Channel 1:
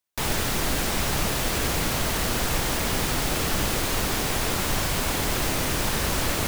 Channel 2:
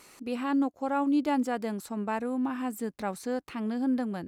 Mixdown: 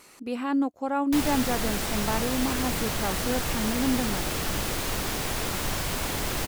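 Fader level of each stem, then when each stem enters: -4.0, +1.5 dB; 0.95, 0.00 s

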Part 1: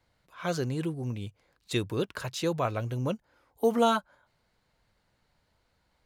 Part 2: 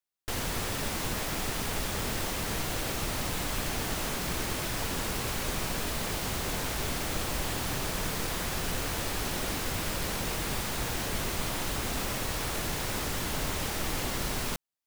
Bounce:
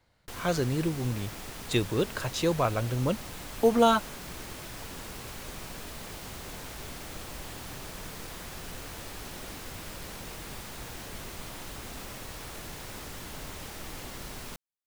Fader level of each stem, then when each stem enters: +2.5, -9.0 dB; 0.00, 0.00 s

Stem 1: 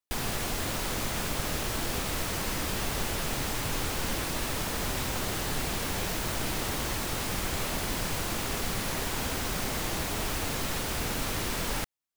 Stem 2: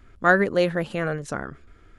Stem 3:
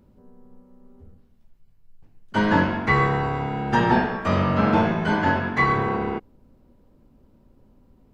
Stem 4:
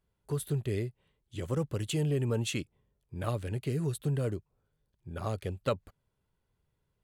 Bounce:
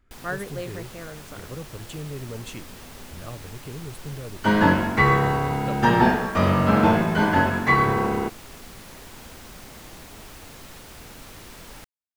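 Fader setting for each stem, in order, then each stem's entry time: -11.5, -13.0, +1.5, -5.5 dB; 0.00, 0.00, 2.10, 0.00 s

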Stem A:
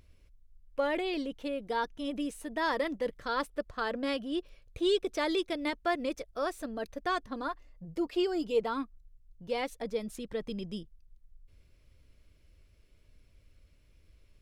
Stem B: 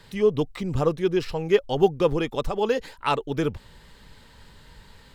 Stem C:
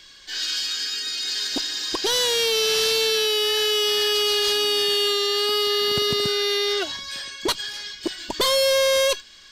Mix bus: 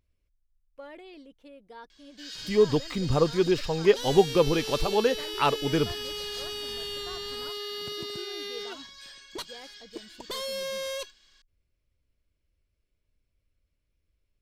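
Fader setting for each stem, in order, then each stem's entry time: -14.5, -0.5, -14.5 dB; 0.00, 2.35, 1.90 s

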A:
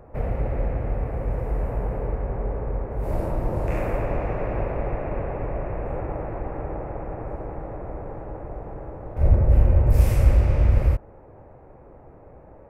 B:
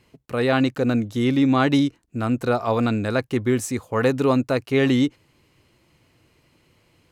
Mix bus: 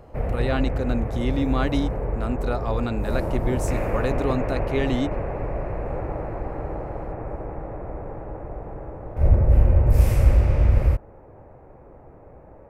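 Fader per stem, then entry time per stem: +0.5, -6.5 dB; 0.00, 0.00 s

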